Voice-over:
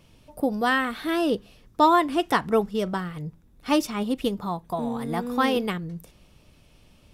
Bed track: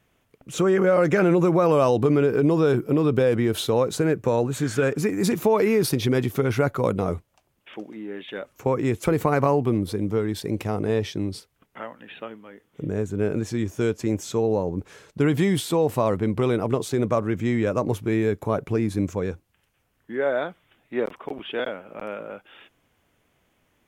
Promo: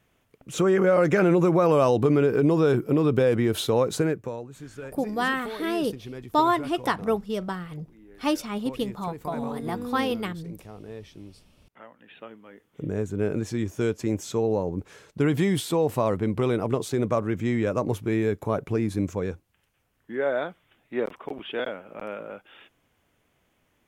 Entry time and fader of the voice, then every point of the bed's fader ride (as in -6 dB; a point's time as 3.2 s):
4.55 s, -3.0 dB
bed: 4.02 s -1 dB
4.46 s -17 dB
11.4 s -17 dB
12.61 s -2 dB